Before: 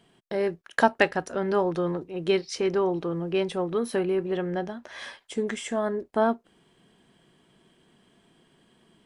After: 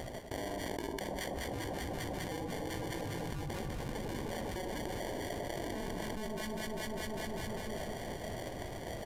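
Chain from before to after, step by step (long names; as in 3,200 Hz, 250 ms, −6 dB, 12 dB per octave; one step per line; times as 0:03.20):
time-frequency cells dropped at random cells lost 29%
inverse Chebyshev band-stop filter 180–460 Hz, stop band 40 dB
guitar amp tone stack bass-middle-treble 6-0-2
tuned comb filter 57 Hz, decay 0.52 s, harmonics all, mix 60%
sample-rate reduction 1,300 Hz, jitter 0%
delay that swaps between a low-pass and a high-pass 100 ms, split 1,100 Hz, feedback 83%, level −5.5 dB
on a send at −16.5 dB: convolution reverb RT60 0.70 s, pre-delay 235 ms
on the sum: downsampling to 32,000 Hz
envelope flattener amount 100%
level +7 dB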